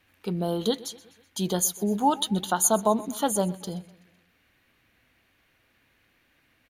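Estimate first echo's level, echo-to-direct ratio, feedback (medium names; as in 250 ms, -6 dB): -20.0 dB, -18.5 dB, 52%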